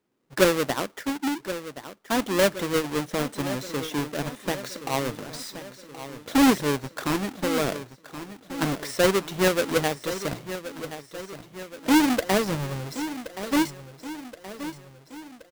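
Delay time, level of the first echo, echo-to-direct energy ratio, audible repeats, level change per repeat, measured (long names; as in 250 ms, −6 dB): 1,074 ms, −12.5 dB, −11.0 dB, 5, −5.5 dB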